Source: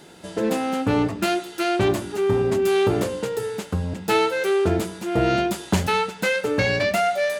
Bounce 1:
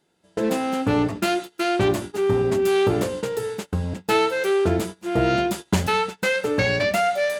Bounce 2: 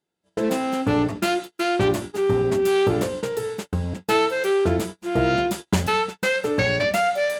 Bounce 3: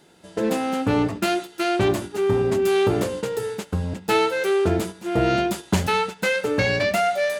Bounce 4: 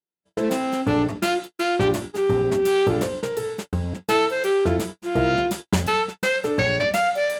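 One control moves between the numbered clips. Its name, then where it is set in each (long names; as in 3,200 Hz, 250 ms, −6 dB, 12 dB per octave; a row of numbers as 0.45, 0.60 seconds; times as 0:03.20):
noise gate, range: −22, −36, −8, −53 decibels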